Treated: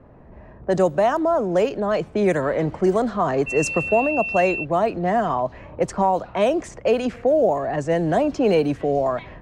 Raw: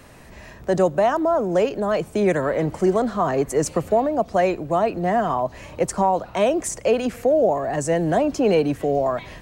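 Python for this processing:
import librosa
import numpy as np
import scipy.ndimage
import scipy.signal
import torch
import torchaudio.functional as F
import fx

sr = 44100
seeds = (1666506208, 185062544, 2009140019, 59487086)

y = fx.dmg_tone(x, sr, hz=2700.0, level_db=-25.0, at=(3.46, 4.63), fade=0.02)
y = fx.env_lowpass(y, sr, base_hz=780.0, full_db=-14.5)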